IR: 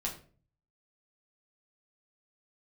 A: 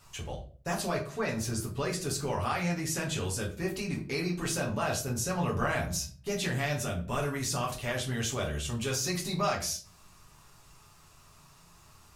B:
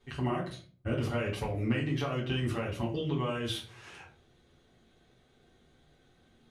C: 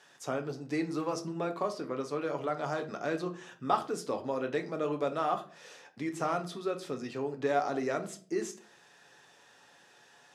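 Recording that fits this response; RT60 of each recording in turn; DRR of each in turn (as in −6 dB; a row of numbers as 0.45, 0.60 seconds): A; 0.40, 0.40, 0.45 seconds; −3.0, −8.0, 4.5 decibels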